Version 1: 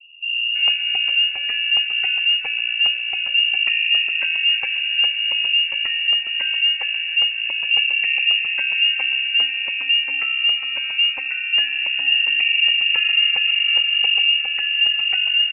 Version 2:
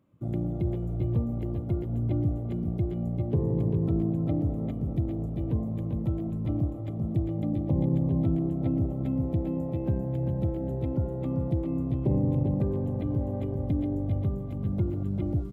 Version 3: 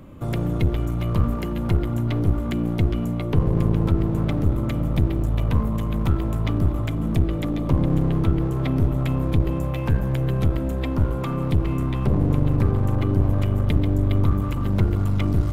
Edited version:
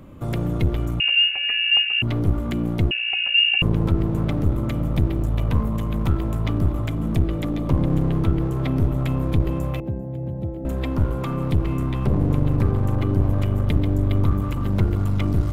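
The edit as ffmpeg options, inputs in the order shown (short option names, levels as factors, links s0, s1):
-filter_complex "[0:a]asplit=2[s0][s1];[2:a]asplit=4[s2][s3][s4][s5];[s2]atrim=end=1.002[s6];[s0]atrim=start=0.998:end=2.022[s7];[s3]atrim=start=2.018:end=2.912[s8];[s1]atrim=start=2.908:end=3.622[s9];[s4]atrim=start=3.618:end=9.802[s10];[1:a]atrim=start=9.798:end=10.652[s11];[s5]atrim=start=10.648[s12];[s6][s7]acrossfade=d=0.004:c1=hsin:c2=hsin[s13];[s13][s8]acrossfade=d=0.004:c1=hsin:c2=hsin[s14];[s14][s9]acrossfade=d=0.004:c1=hsin:c2=hsin[s15];[s15][s10]acrossfade=d=0.004:c1=hsin:c2=hsin[s16];[s16][s11]acrossfade=d=0.004:c1=hsin:c2=hsin[s17];[s17][s12]acrossfade=d=0.004:c1=hsin:c2=hsin"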